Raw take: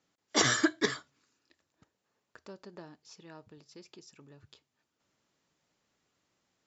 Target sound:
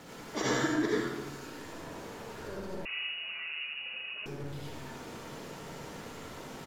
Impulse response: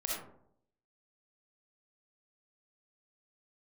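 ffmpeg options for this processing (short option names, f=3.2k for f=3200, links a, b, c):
-filter_complex "[0:a]aeval=exprs='val(0)+0.5*0.0188*sgn(val(0))':c=same,highshelf=f=2.1k:g=-10.5,aecho=1:1:79|158|237|316|395|474|553:0.355|0.213|0.128|0.0766|0.046|0.0276|0.0166[a];[1:a]atrim=start_sample=2205,asetrate=31311,aresample=44100[b];[a][b]afir=irnorm=-1:irlink=0,asettb=1/sr,asplit=3[c][d][e];[c]atrim=end=2.854[f];[d]atrim=start=2.85:end=4.26,asetpts=PTS-STARTPTS,afade=t=in:d=0.004:c=qsin,afade=t=out:st=1.406:d=0.004:c=qsin,lowpass=f=2.5k:t=q:w=0.5098,lowpass=f=2.5k:t=q:w=0.6013,lowpass=f=2.5k:t=q:w=0.9,lowpass=f=2.5k:t=q:w=2.563,afreqshift=-2900[g];[e]atrim=start=4.256[h];[f][g]acrossfade=d=0.004:c1=hsin:c2=qsin[i];[i][h]acrossfade=d=0.004:c1=qsin:c2=hsin,volume=-6.5dB"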